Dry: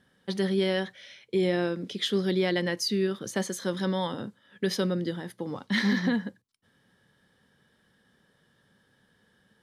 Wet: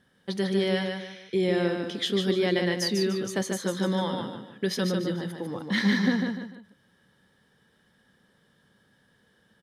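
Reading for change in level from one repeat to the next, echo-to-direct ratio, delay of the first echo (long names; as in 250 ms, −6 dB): −9.0 dB, −4.0 dB, 148 ms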